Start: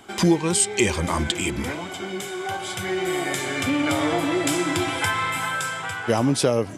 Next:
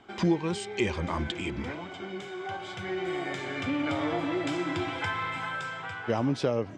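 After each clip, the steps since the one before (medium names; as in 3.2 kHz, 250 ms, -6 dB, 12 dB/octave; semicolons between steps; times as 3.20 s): distance through air 160 m; trim -6.5 dB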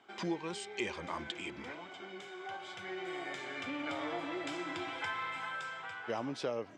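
high-pass 500 Hz 6 dB/octave; trim -5.5 dB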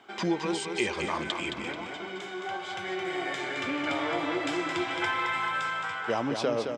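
feedback delay 218 ms, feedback 38%, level -6 dB; trim +8 dB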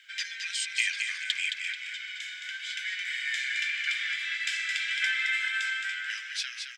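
Chebyshev high-pass 1.6 kHz, order 6; in parallel at -9 dB: saturation -28 dBFS, distortion -16 dB; on the sum: trim +3.5 dB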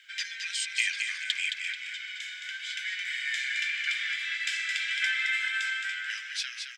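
bass shelf 260 Hz -9 dB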